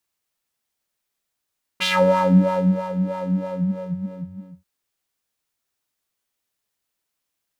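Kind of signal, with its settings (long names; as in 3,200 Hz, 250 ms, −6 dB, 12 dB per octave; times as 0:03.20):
subtractive patch with filter wobble F#3, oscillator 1 square, interval +7 semitones, oscillator 2 level −16 dB, noise −10 dB, filter bandpass, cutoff 140 Hz, Q 3, filter envelope 4 octaves, filter decay 0.44 s, attack 21 ms, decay 1.07 s, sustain −12.5 dB, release 1.34 s, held 1.50 s, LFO 3.1 Hz, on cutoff 1 octave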